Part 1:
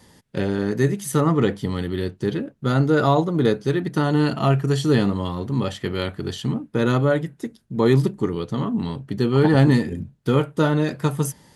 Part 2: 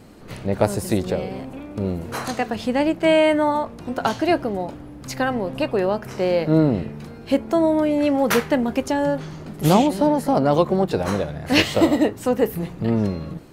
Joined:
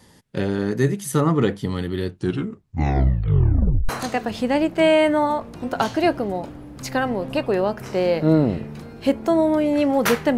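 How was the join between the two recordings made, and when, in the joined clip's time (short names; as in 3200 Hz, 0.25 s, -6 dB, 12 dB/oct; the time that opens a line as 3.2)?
part 1
2.1 tape stop 1.79 s
3.89 switch to part 2 from 2.14 s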